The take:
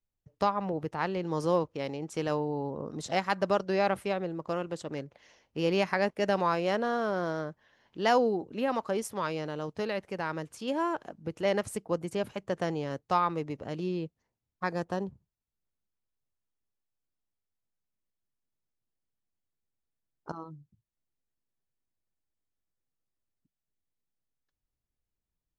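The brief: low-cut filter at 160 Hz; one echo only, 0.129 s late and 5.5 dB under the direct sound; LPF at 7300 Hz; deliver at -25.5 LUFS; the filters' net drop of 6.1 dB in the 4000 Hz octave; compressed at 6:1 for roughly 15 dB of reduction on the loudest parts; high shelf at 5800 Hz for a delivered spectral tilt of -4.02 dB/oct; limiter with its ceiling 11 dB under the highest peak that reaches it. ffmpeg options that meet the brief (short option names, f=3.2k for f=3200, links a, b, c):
-af "highpass=160,lowpass=7.3k,equalizer=f=4k:t=o:g=-7,highshelf=f=5.8k:g=-5,acompressor=threshold=-37dB:ratio=6,alimiter=level_in=9dB:limit=-24dB:level=0:latency=1,volume=-9dB,aecho=1:1:129:0.531,volume=18dB"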